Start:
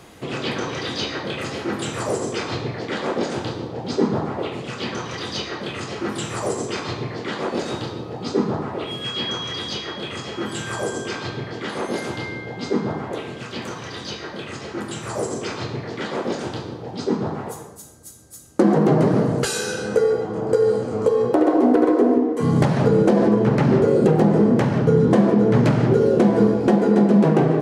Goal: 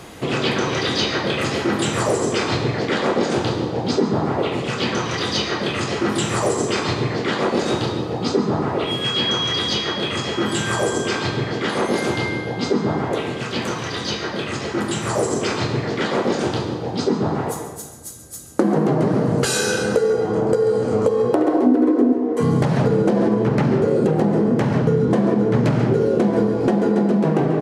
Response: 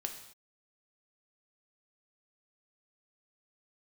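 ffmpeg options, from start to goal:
-filter_complex "[0:a]asettb=1/sr,asplit=3[link_01][link_02][link_03];[link_01]atrim=end=21.664[link_04];[link_02]atrim=start=21.66:end=22.13,asetpts=PTS-STARTPTS,afade=type=in:duration=0.004:curve=qsin,afade=type=out:start_time=0.466:duration=0.004:curve=qsin,equalizer=frequency=270:width_type=o:width=0.42:gain=14.5[link_05];[link_03]atrim=start=22.126[link_06];[link_04][link_05]acrossfade=duration=0.004:curve1=hsin:curve2=qsin[link_07];[link_07][link_06]acrossfade=duration=0.004:curve1=qsin:curve2=hsin,acompressor=threshold=-22dB:ratio=4,asplit=2[link_08][link_09];[1:a]atrim=start_sample=2205,asetrate=26460,aresample=44100,adelay=137[link_10];[link_09][link_10]afir=irnorm=-1:irlink=0,volume=-15dB[link_11];[link_08][link_11]amix=inputs=2:normalize=0,aresample=32000,aresample=44100,volume=6.5dB"

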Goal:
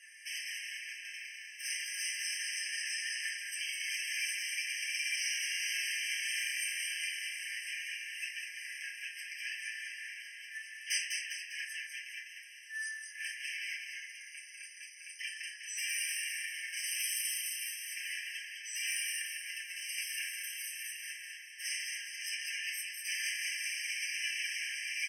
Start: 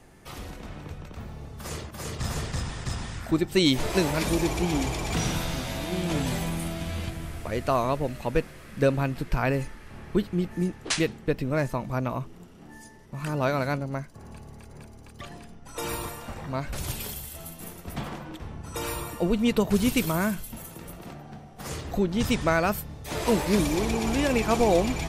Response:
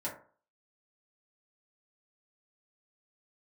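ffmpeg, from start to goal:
-filter_complex "[0:a]acompressor=threshold=-31dB:ratio=3,volume=35.5dB,asoftclip=hard,volume=-35.5dB,asettb=1/sr,asplit=3[link_01][link_02][link_03];[link_01]atrim=end=5.724[link_04];[link_02]atrim=start=5.72:end=7.04,asetpts=PTS-STARTPTS,afade=type=in:duration=0.004:curve=qsin,afade=type=out:start_time=1.316:duration=0.004:curve=qsin,asplit=2[link_05][link_06];[link_06]adelay=28,volume=-3.5dB[link_07];[link_05][link_07]amix=inputs=2:normalize=0,atrim=end_sample=58212[link_08];[link_03]atrim=start=7.036[link_09];[link_04][link_08]acrossfade=duration=0.004:curve1=hsin:curve2=qsin[link_10];[link_10][link_09]acrossfade=duration=0.004:curve1=qsin:curve2=hsin,asplit=7[link_11][link_12][link_13][link_14][link_15][link_16][link_17];[link_12]adelay=200,afreqshift=-39,volume=-4dB[link_18];[link_13]adelay=400,afreqshift=-78,volume=-10.2dB[link_19];[link_14]adelay=600,afreqshift=-117,volume=-16.4dB[link_20];[link_15]adelay=800,afreqshift=-156,volume=-22.6dB[link_21];[link_16]adelay=1000,afreqshift=-195,volume=-28.8dB[link_22];[link_17]adelay=1200,afreqshift=-234,volume=-35dB[link_23];[link_11][link_18][link_19][link_20][link_21][link_22][link_23]amix=inputs=7:normalize=0[link_24];[1:a]atrim=start_sample=2205,asetrate=22050,aresample=44100[link_25];[link_24][link_25]afir=irnorm=-1:irlink=0,afftfilt=real='re*eq(mod(floor(b*sr/1024/1600),2),1)':imag='im*eq(mod(floor(b*sr/1024/1600),2),1)':win_size=1024:overlap=0.75,volume=6dB"

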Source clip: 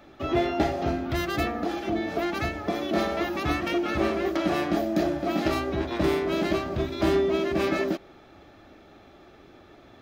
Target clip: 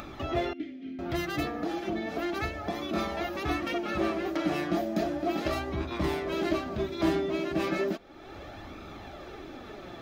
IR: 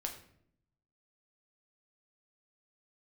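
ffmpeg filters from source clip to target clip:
-filter_complex "[0:a]flanger=delay=0.8:depth=5.8:regen=42:speed=0.34:shape=sinusoidal,acompressor=mode=upward:threshold=-31dB:ratio=2.5,asettb=1/sr,asplit=3[link_01][link_02][link_03];[link_01]atrim=end=0.534[link_04];[link_02]atrim=start=0.53:end=0.99,asetpts=PTS-STARTPTS,afade=type=in:duration=0.004:curve=qsin,afade=type=out:start_time=0.456:duration=0.004:curve=qsin,asplit=3[link_05][link_06][link_07];[link_05]bandpass=frequency=270:width_type=q:width=8,volume=0dB[link_08];[link_06]bandpass=frequency=2290:width_type=q:width=8,volume=-6dB[link_09];[link_07]bandpass=frequency=3010:width_type=q:width=8,volume=-9dB[link_10];[link_08][link_09][link_10]amix=inputs=3:normalize=0[link_11];[link_03]atrim=start=0.986[link_12];[link_04][link_11]acrossfade=duration=0.004:curve1=hsin:curve2=qsin[link_13];[link_13][link_12]acrossfade=duration=0.004:curve1=qsin:curve2=hsin"

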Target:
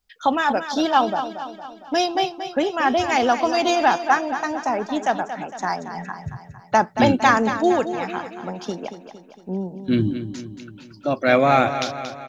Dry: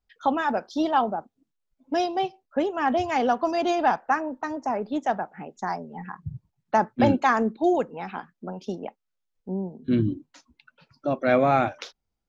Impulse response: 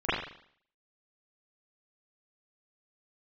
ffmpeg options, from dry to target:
-af "highshelf=frequency=2000:gain=10,aecho=1:1:229|458|687|916|1145|1374:0.299|0.161|0.0871|0.047|0.0254|0.0137,volume=2.5dB"

